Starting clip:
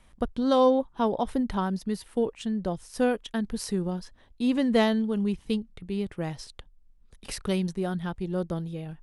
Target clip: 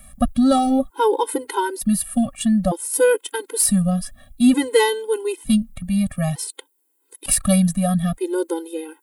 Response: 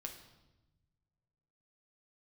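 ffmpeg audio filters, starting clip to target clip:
-af "apsyclip=7.08,aexciter=amount=5.3:drive=8.2:freq=7900,afftfilt=real='re*gt(sin(2*PI*0.55*pts/sr)*(1-2*mod(floor(b*sr/1024/270),2)),0)':imag='im*gt(sin(2*PI*0.55*pts/sr)*(1-2*mod(floor(b*sr/1024/270),2)),0)':win_size=1024:overlap=0.75,volume=0.562"

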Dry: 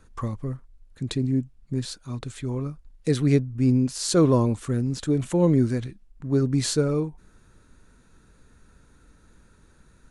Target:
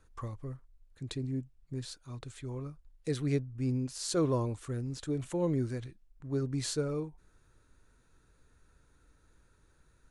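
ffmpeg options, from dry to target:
-af "equalizer=f=210:w=2.8:g=-9,volume=0.355"

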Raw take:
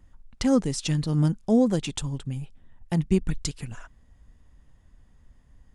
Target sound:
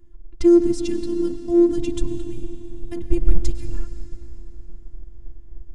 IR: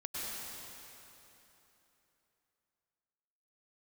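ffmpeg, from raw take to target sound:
-filter_complex "[0:a]asplit=2[s0][s1];[1:a]atrim=start_sample=2205[s2];[s1][s2]afir=irnorm=-1:irlink=0,volume=0.282[s3];[s0][s3]amix=inputs=2:normalize=0,asubboost=boost=5.5:cutoff=89,acontrast=26,lowshelf=f=350:t=q:w=3:g=11,afftfilt=real='hypot(re,im)*cos(PI*b)':imag='0':win_size=512:overlap=0.75,volume=0.376"

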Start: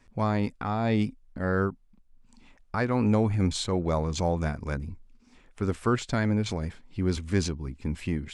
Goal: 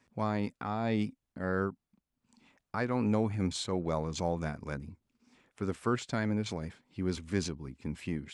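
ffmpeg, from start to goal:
-af "highpass=110,volume=0.562"

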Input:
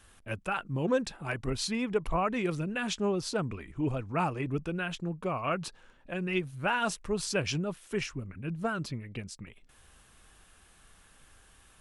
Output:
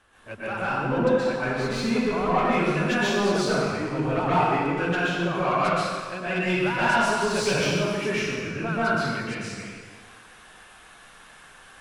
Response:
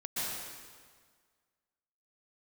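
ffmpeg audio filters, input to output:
-filter_complex "[0:a]asetnsamples=n=441:p=0,asendcmd='2.38 lowpass f 2300',asplit=2[s0][s1];[s1]highpass=f=720:p=1,volume=7.08,asoftclip=type=tanh:threshold=0.168[s2];[s0][s2]amix=inputs=2:normalize=0,lowpass=f=1100:p=1,volume=0.501[s3];[1:a]atrim=start_sample=2205[s4];[s3][s4]afir=irnorm=-1:irlink=0"

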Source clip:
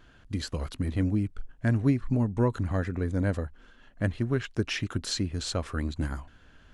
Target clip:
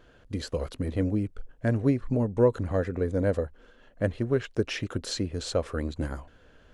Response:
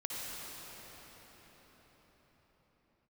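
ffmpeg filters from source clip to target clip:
-af "equalizer=f=500:w=1.8:g=11.5,volume=0.794"

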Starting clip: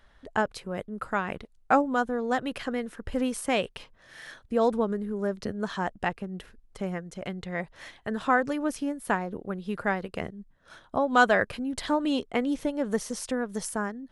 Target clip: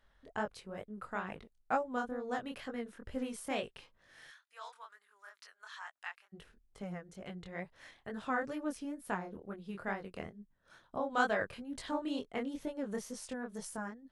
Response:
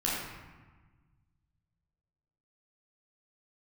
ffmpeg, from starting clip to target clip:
-filter_complex "[0:a]asplit=3[s0][s1][s2];[s0]afade=t=out:st=4.27:d=0.02[s3];[s1]highpass=f=1100:w=0.5412,highpass=f=1100:w=1.3066,afade=t=in:st=4.27:d=0.02,afade=t=out:st=6.32:d=0.02[s4];[s2]afade=t=in:st=6.32:d=0.02[s5];[s3][s4][s5]amix=inputs=3:normalize=0,flanger=delay=19:depth=6.9:speed=2.2,volume=0.422"

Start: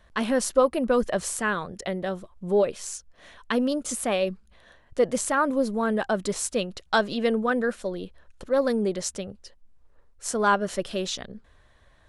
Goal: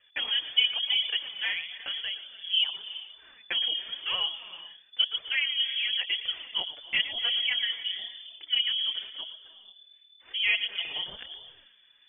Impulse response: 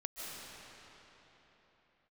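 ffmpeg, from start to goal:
-filter_complex "[0:a]asettb=1/sr,asplit=3[s0][s1][s2];[s0]atrim=end=7.344[s3];[s1]atrim=start=7.34:end=8.45,asetpts=PTS-STARTPTS,afade=t=in:d=0.004:c=qsin,afade=t=out:st=1.106:d=0.004:c=qsin,asplit=2[s4][s5];[s5]adelay=27,volume=0.422[s6];[s4][s6]amix=inputs=2:normalize=0,atrim=end_sample=48951[s7];[s2]atrim=start=8.446[s8];[s3][s7]acrossfade=d=0.004:c1=hsin:c2=qsin[s9];[s9][s8]acrossfade=d=0.004:c1=qsin:c2=hsin,lowpass=f=3000:t=q:w=0.5098,lowpass=f=3000:t=q:w=0.6013,lowpass=f=3000:t=q:w=0.9,lowpass=f=3000:t=q:w=2.563,afreqshift=-3500,asplit=2[s10][s11];[1:a]atrim=start_sample=2205,afade=t=out:st=0.43:d=0.01,atrim=end_sample=19404,adelay=115[s12];[s11][s12]afir=irnorm=-1:irlink=0,volume=0.335[s13];[s10][s13]amix=inputs=2:normalize=0,flanger=delay=1.5:depth=5.6:regen=1:speed=0.96:shape=triangular,volume=0.794"

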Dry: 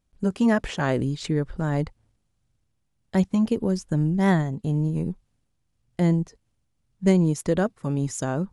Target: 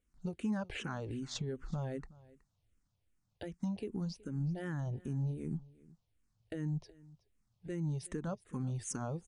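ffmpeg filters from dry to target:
-filter_complex "[0:a]acompressor=threshold=0.0631:ratio=5,alimiter=limit=0.0708:level=0:latency=1:release=318,aecho=1:1:341:0.0841,asetrate=40517,aresample=44100,asplit=2[s0][s1];[s1]afreqshift=-2.6[s2];[s0][s2]amix=inputs=2:normalize=1,volume=0.75"

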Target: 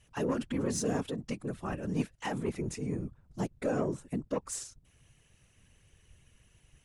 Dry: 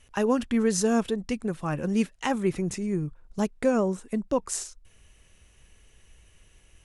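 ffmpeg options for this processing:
-af "asoftclip=type=tanh:threshold=0.141,afftfilt=real='hypot(re,im)*cos(2*PI*random(0))':imag='hypot(re,im)*sin(2*PI*random(1))':win_size=512:overlap=0.75"

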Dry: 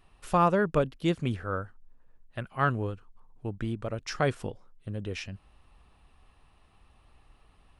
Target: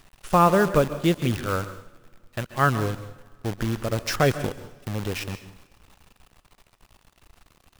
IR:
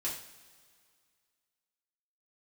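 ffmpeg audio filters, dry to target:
-filter_complex "[0:a]acrusher=bits=7:dc=4:mix=0:aa=0.000001,asettb=1/sr,asplit=3[s0][s1][s2];[s0]atrim=end=3.924[s3];[s1]atrim=start=3.92:end=4.46,asetpts=PTS-STARTPTS,afade=t=in:d=0.004:c=qsin,afade=t=out:st=0.536:d=0.004:c=qsin,aeval=exprs='0.211*(cos(1*acos(clip(val(0)/0.211,-1,1)))-cos(1*PI/2))+0.0168*(cos(5*acos(clip(val(0)/0.211,-1,1)))-cos(5*PI/2))':c=same[s4];[s2]atrim=start=4.456[s5];[s3][s4]acrossfade=d=0.004:c1=hsin:c2=qsin[s6];[s6][s5]acrossfade=d=0.004:c1=qsin:c2=hsin,asplit=2[s7][s8];[1:a]atrim=start_sample=2205,adelay=132[s9];[s8][s9]afir=irnorm=-1:irlink=0,volume=0.188[s10];[s7][s10]amix=inputs=2:normalize=0,volume=1.88"

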